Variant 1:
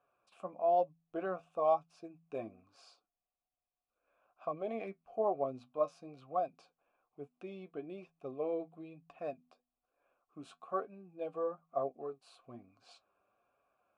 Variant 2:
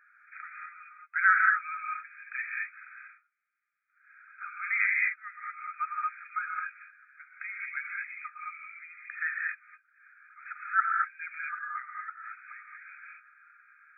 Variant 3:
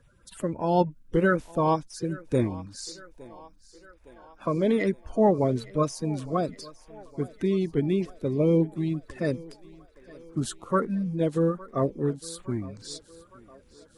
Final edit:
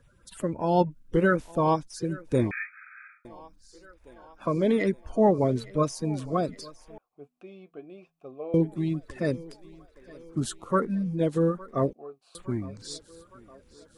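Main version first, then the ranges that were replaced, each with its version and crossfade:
3
2.51–3.25 from 2
6.98–8.54 from 1
11.93–12.35 from 1

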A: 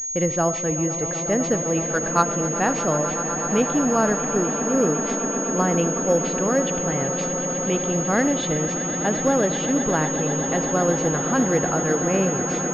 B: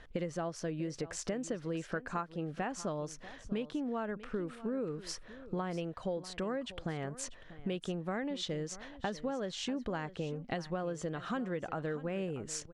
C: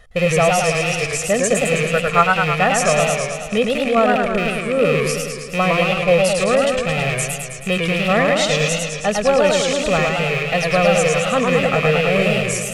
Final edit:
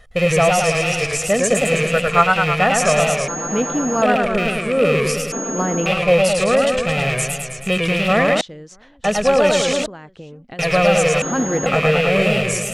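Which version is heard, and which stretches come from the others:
C
3.28–4.02 from A
5.32–5.86 from A
8.41–9.04 from B
9.86–10.59 from B
11.22–11.66 from A

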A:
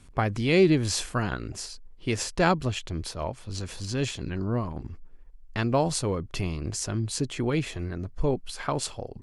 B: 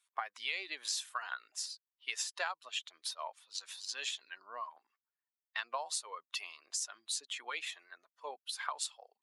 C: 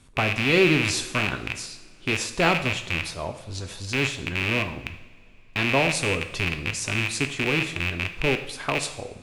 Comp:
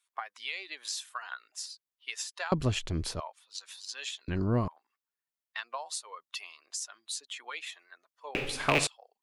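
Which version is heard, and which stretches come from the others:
B
2.52–3.2 from A
4.28–4.68 from A
8.35–8.87 from C

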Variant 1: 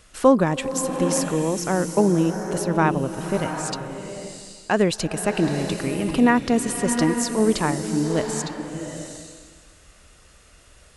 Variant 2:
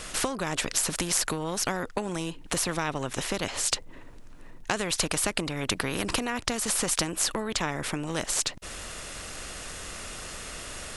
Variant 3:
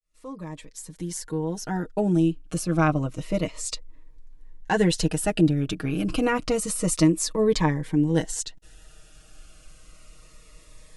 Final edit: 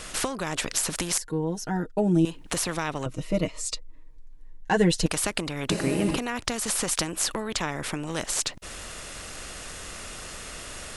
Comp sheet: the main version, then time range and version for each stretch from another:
2
1.18–2.25 from 3
3.06–5.06 from 3
5.7–6.17 from 1

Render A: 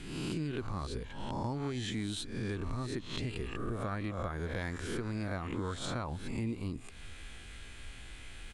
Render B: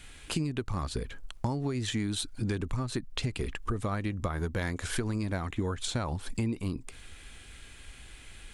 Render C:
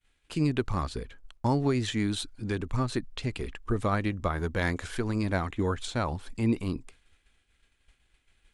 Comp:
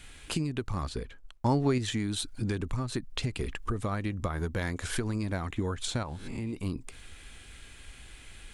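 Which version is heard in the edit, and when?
B
0.89–1.78 from C
6.03–6.53 from A

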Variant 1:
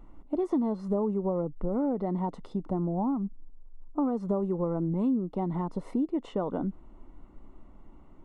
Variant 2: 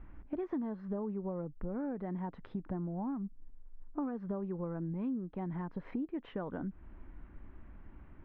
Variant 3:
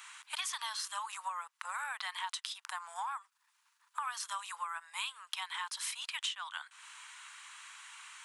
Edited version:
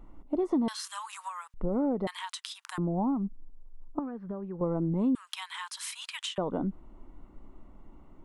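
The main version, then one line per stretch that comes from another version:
1
0.68–1.54 from 3
2.07–2.78 from 3
3.99–4.61 from 2
5.15–6.38 from 3

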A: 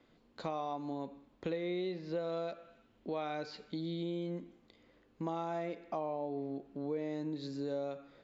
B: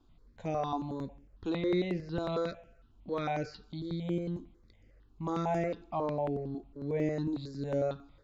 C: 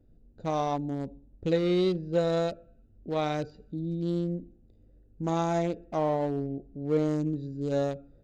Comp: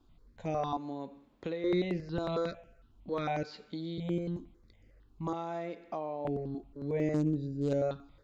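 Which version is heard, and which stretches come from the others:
B
0.77–1.64 from A
3.43–3.98 from A
5.33–6.25 from A
7.14–7.73 from C

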